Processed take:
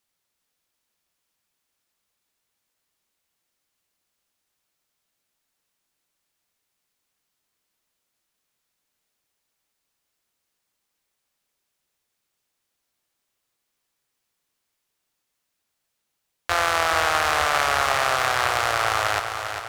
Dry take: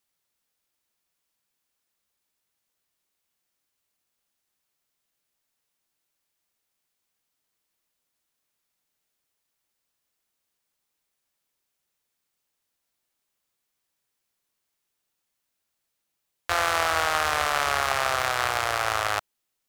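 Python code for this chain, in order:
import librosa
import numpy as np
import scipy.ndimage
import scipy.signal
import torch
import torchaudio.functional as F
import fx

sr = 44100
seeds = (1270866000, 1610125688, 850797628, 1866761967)

p1 = fx.high_shelf(x, sr, hz=11000.0, db=-4.0)
p2 = p1 + fx.echo_feedback(p1, sr, ms=400, feedback_pct=53, wet_db=-7.5, dry=0)
y = F.gain(torch.from_numpy(p2), 2.5).numpy()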